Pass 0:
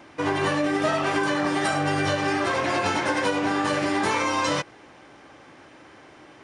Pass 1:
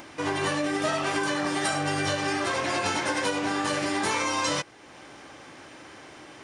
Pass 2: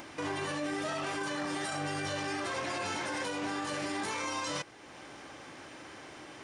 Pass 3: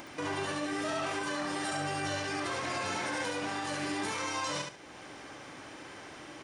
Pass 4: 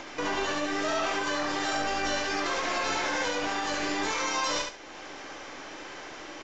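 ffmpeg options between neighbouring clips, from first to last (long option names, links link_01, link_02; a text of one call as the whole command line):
ffmpeg -i in.wav -filter_complex "[0:a]highshelf=frequency=4000:gain=9.5,asplit=2[link_01][link_02];[link_02]acompressor=mode=upward:threshold=-27dB:ratio=2.5,volume=-2.5dB[link_03];[link_01][link_03]amix=inputs=2:normalize=0,volume=-9dB" out.wav
ffmpeg -i in.wav -af "alimiter=level_in=1dB:limit=-24dB:level=0:latency=1:release=16,volume=-1dB,volume=-2dB" out.wav
ffmpeg -i in.wav -af "aecho=1:1:70|140|210:0.562|0.129|0.0297" out.wav
ffmpeg -i in.wav -filter_complex "[0:a]acrossover=split=240|2800[link_01][link_02][link_03];[link_01]aeval=exprs='abs(val(0))':channel_layout=same[link_04];[link_03]asplit=2[link_05][link_06];[link_06]adelay=19,volume=-5dB[link_07];[link_05][link_07]amix=inputs=2:normalize=0[link_08];[link_04][link_02][link_08]amix=inputs=3:normalize=0,aresample=16000,aresample=44100,volume=5.5dB" out.wav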